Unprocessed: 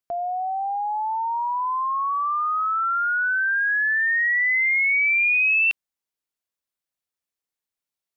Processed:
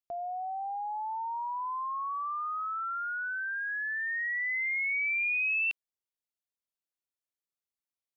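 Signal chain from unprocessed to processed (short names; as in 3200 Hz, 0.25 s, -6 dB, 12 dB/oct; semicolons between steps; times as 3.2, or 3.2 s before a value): bell 1600 Hz -3.5 dB; gain -9 dB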